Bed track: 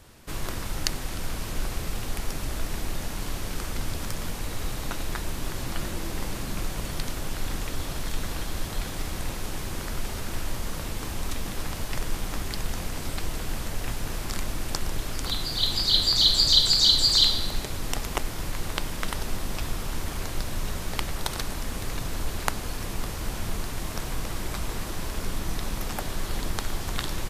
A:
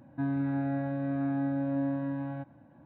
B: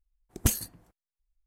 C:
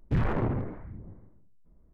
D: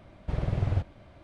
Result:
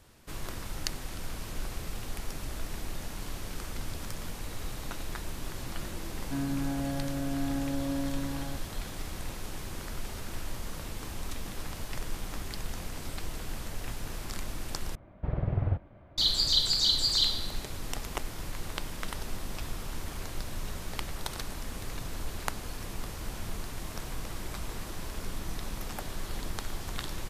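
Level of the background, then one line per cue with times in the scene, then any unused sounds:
bed track -6.5 dB
6.13 add A -2.5 dB
14.95 replace with D -1.5 dB + LPF 1800 Hz
not used: B, C

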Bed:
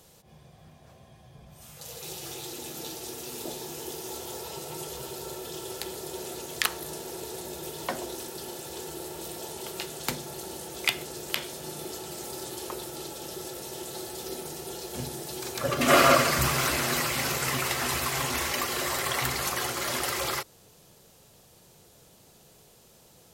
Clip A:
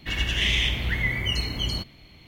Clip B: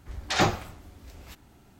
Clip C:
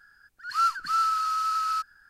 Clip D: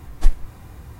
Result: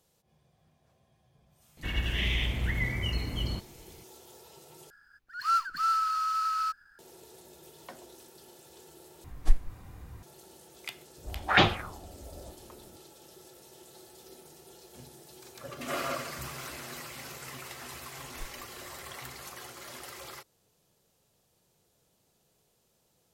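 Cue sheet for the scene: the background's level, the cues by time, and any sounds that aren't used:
bed -15 dB
1.77 add A -2.5 dB + tape spacing loss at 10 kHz 22 dB
4.9 replace with C -2.5 dB + median filter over 5 samples
9.24 replace with D -7 dB
11.18 add B -1 dB + envelope low-pass 510–3300 Hz up, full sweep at -21 dBFS
18.16 add D -16 dB + notch comb 990 Hz

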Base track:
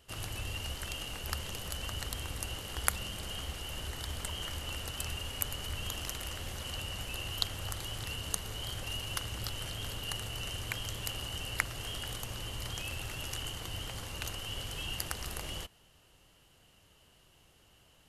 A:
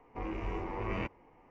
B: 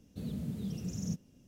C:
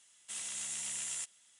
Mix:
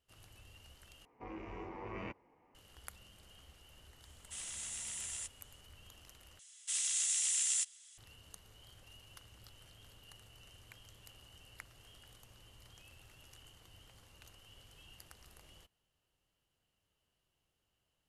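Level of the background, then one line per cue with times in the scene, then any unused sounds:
base track -20 dB
1.05 replace with A -7.5 dB + HPF 98 Hz 6 dB/oct
4.02 add C -4 dB
6.39 replace with C -5 dB + weighting filter ITU-R 468
not used: B

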